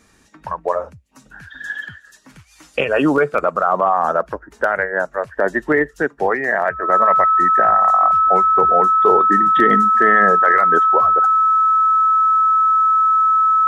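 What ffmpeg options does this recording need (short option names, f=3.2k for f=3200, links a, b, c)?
-af "bandreject=f=1.3k:w=30"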